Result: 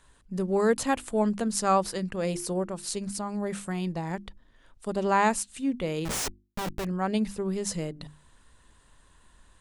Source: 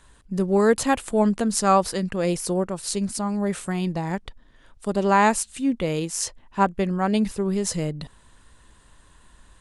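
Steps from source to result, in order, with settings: 6.05–6.85 Schmitt trigger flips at -32 dBFS; notches 50/100/150/200/250/300/350 Hz; gain -5 dB

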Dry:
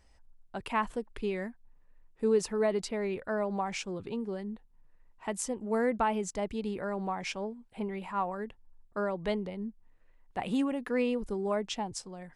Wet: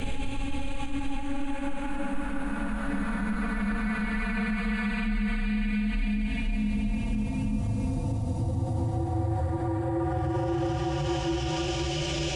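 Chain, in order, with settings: notches 50/100/150/200/250/300/350/400/450/500 Hz; in parallel at +2.5 dB: compressor, threshold -40 dBFS, peak gain reduction 17 dB; on the sum: Paulstretch 11×, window 0.50 s, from 10.57; limiter -26 dBFS, peak gain reduction 10.5 dB; frequency shift -280 Hz; gain +5.5 dB

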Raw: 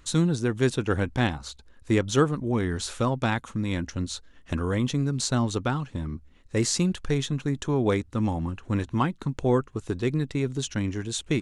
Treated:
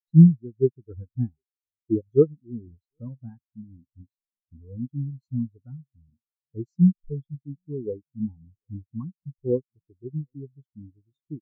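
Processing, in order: echo 0.752 s -18 dB; spectral expander 4:1; gain +5.5 dB

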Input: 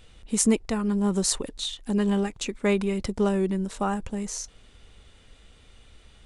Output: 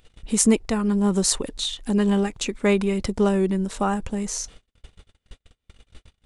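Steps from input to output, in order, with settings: gate -46 dBFS, range -51 dB; in parallel at 0 dB: upward compressor, threshold -26 dBFS; on the sum: gain -2.5 dB

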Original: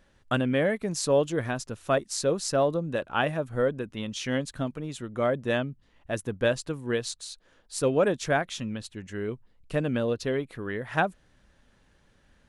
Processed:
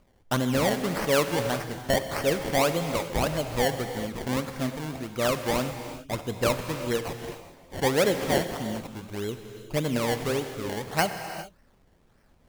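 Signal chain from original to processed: decimation with a swept rate 24×, swing 100% 1.7 Hz; non-linear reverb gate 0.44 s flat, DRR 7 dB

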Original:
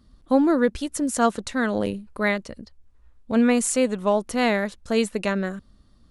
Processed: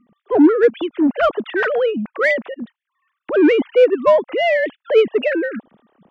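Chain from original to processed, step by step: sine-wave speech; AGC gain up to 6 dB; in parallel at -3.5 dB: soft clip -18.5 dBFS, distortion -7 dB

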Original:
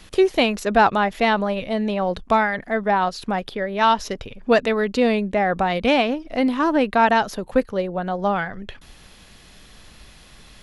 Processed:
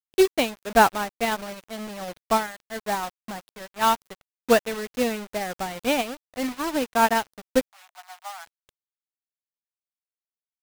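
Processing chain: bit-crush 4-bit; 7.7–8.46 steep high-pass 660 Hz 96 dB/oct; upward expander 2.5:1, over -28 dBFS

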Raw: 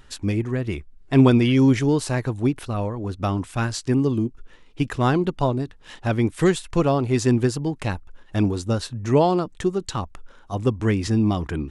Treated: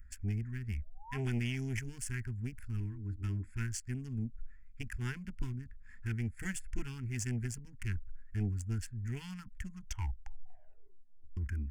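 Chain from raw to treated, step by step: Wiener smoothing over 15 samples; 0.62–1.18 painted sound rise 420–1100 Hz -18 dBFS; elliptic band-stop 210–1200 Hz, stop band 40 dB; passive tone stack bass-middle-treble 6-0-2; 2.8–3.51 AM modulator 210 Hz, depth 20%; soft clip -34.5 dBFS, distortion -16 dB; 9.64 tape stop 1.73 s; fixed phaser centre 790 Hz, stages 8; 4.89–5.42 three-band expander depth 40%; gain +13.5 dB

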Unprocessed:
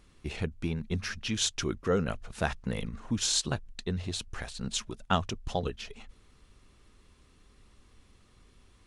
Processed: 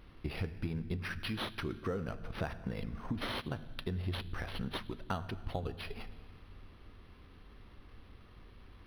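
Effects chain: compressor 6:1, threshold -39 dBFS, peak gain reduction 17 dB; reverb RT60 1.7 s, pre-delay 5 ms, DRR 11 dB; decimation joined by straight lines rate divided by 6×; gain +4.5 dB

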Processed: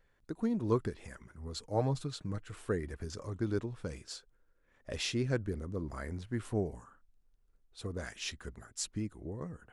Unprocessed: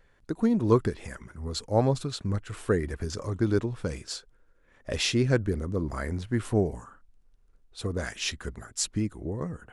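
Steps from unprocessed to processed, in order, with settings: 1.64–2.53 comb 6.5 ms, depth 47%; gain -8.5 dB

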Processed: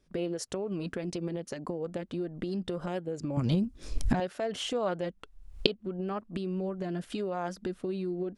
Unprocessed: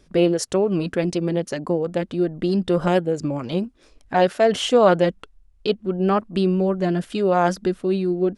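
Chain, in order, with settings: recorder AGC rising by 60 dB/s; 3.37–4.2 tone controls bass +15 dB, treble +8 dB; gain -16 dB

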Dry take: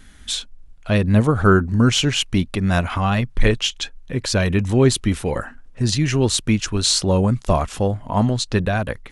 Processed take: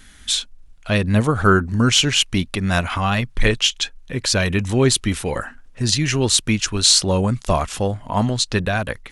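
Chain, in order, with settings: tilt shelf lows -3.5 dB, about 1200 Hz; gain +1.5 dB

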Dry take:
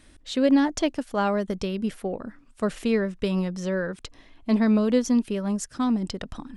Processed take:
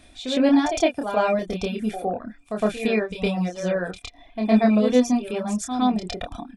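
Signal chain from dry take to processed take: doubler 28 ms -4 dB; small resonant body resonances 710/2400/3500 Hz, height 17 dB, ringing for 55 ms; reverse echo 0.111 s -7.5 dB; reverb removal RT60 0.6 s

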